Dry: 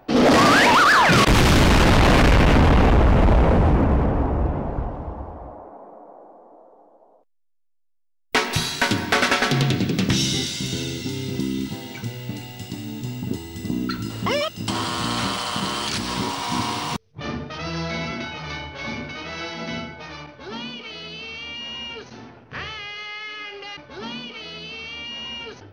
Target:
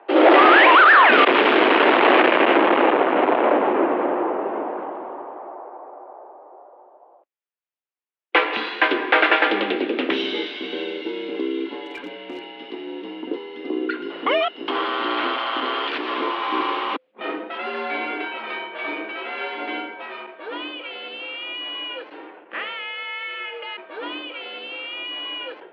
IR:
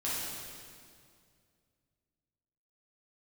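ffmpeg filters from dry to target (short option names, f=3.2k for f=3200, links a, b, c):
-filter_complex "[0:a]highpass=f=250:t=q:w=0.5412,highpass=f=250:t=q:w=1.307,lowpass=f=3.1k:t=q:w=0.5176,lowpass=f=3.1k:t=q:w=0.7071,lowpass=f=3.1k:t=q:w=1.932,afreqshift=68,asettb=1/sr,asplit=3[a][b][c];[a]atrim=end=11.854[d];[b]atrim=start=11.85:end=12.48,asetpts=PTS-STARTPTS,afade=t=in:d=0.004:c=qsin,afade=t=out:st=0.626:d=0.004:c=qsin,volume=30.5dB,asoftclip=hard,volume=-30.5dB[e];[c]atrim=start=12.476[f];[d][e]acrossfade=d=0.004:c1=hsin:c2=qsin[g];[g][f]acrossfade=d=0.004:c1=qsin:c2=hsin,volume=3.5dB"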